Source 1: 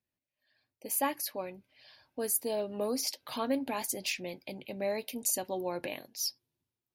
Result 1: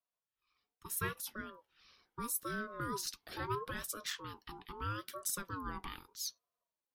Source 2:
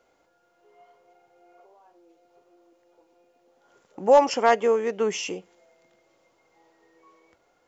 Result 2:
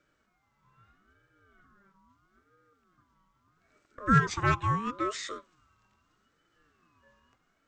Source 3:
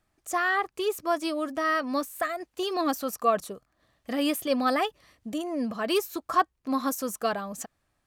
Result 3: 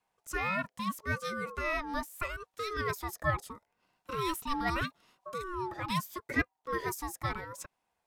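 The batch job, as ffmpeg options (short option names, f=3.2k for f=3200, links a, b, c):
-af "afreqshift=32,aeval=exprs='val(0)*sin(2*PI*720*n/s+720*0.2/0.77*sin(2*PI*0.77*n/s))':c=same,volume=-4dB"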